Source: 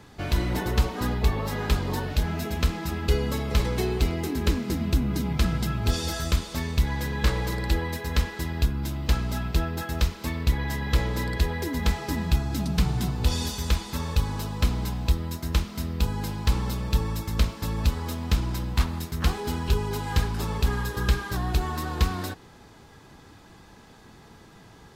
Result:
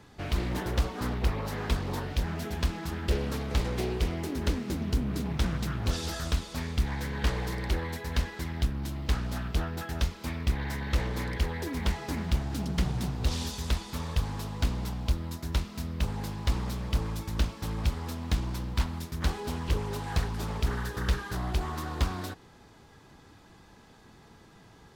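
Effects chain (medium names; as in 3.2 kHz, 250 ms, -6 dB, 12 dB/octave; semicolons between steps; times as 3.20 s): loudspeaker Doppler distortion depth 0.95 ms; trim -4.5 dB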